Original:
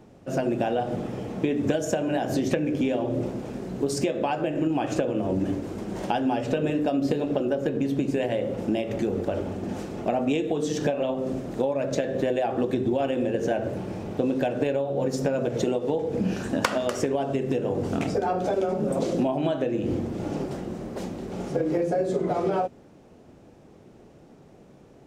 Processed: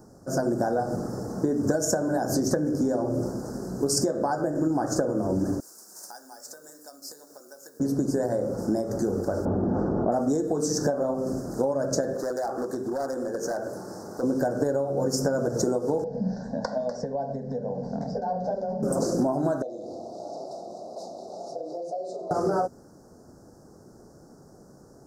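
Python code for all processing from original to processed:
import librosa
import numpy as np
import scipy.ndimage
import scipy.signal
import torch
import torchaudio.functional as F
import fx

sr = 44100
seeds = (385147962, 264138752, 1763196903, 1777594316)

y = fx.chain(x, sr, fx.highpass(hz=190.0, slope=6),
    fx.differentiator(),
    fx.quant_companded(bits=6), at=(5.6, 7.8))
y = fx.chain(y, sr, fx.lowpass(hz=1100.0, slope=12),
    fx.env_flatten(amount_pct=70), at=(9.45, 10.12))
y = fx.chain(y, sr, fx.highpass(hz=490.0, slope=6),
    fx.clip_hard(threshold_db=-24.5), at=(12.14, 14.23))
y = fx.chain(y, sr, fx.lowpass(hz=3700.0, slope=24),
    fx.peak_eq(hz=340.0, db=-10.0, octaves=0.57),
    fx.fixed_phaser(hz=340.0, stages=6), at=(16.04, 18.83))
y = fx.chain(y, sr, fx.double_bandpass(hz=1600.0, octaves=2.5),
    fx.env_flatten(amount_pct=50), at=(19.62, 22.31))
y = scipy.signal.sosfilt(scipy.signal.ellip(3, 1.0, 80, [1500.0, 5000.0], 'bandstop', fs=sr, output='sos'), y)
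y = fx.high_shelf(y, sr, hz=2500.0, db=10.5)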